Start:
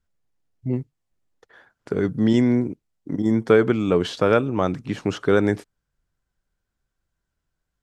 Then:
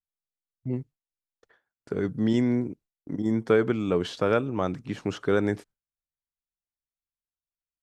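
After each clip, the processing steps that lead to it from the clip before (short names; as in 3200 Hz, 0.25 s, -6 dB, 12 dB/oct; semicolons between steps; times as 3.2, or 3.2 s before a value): gate with hold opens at -38 dBFS; gain -5.5 dB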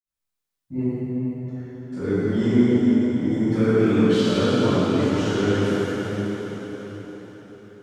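limiter -21.5 dBFS, peak gain reduction 11.5 dB; reverb RT60 5.2 s, pre-delay 46 ms; gain +4.5 dB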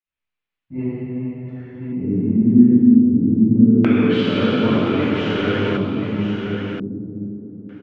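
LFO low-pass square 0.26 Hz 240–2600 Hz; echo 1.028 s -6.5 dB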